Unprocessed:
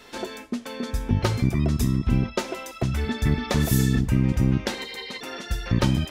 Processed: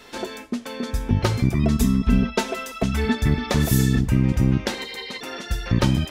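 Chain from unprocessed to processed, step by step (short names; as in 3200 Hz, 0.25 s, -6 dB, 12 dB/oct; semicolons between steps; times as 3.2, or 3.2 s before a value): 1.63–3.15 comb 4.5 ms, depth 81%; gain +2 dB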